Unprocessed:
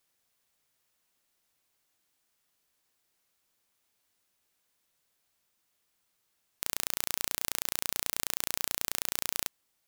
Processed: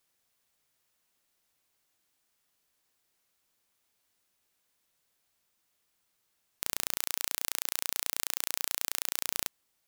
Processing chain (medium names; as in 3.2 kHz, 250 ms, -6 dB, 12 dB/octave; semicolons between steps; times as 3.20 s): 6.97–9.27 s: bass shelf 420 Hz -10.5 dB